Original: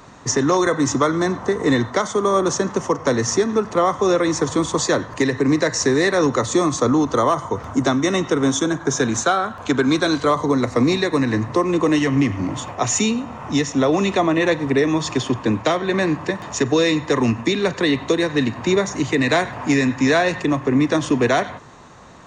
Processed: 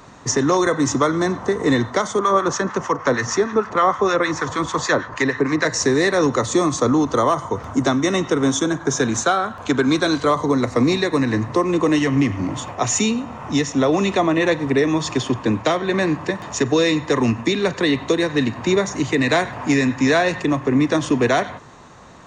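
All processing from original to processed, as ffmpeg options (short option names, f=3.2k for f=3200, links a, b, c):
-filter_complex "[0:a]asettb=1/sr,asplit=3[a][b][c];[a]atrim=end=2.194[d];[b]atrim=start=2.19:end=5.65,asetpts=PTS-STARTPTS,afade=t=in:d=0.004:c=qsin,afade=t=out:st=3.456:d=0.004:c=qsin,lowpass=f=7.8k:w=0.5412,lowpass=f=7.8k:w=1.3066,equalizer=f=1.5k:t=o:w=1.7:g=9,acrossover=split=980[e][f];[e]aeval=exprs='val(0)*(1-0.7/2+0.7/2*cos(2*PI*6.5*n/s))':c=same[g];[f]aeval=exprs='val(0)*(1-0.7/2-0.7/2*cos(2*PI*6.5*n/s))':c=same[h];[g][h]amix=inputs=2:normalize=0[i];[c]atrim=start=5.646[j];[d][i]acrossfade=d=0.004:c1=hsin:c2=qsin[k];[k][j]acrossfade=d=0.004:c1=qsin:c2=hsin"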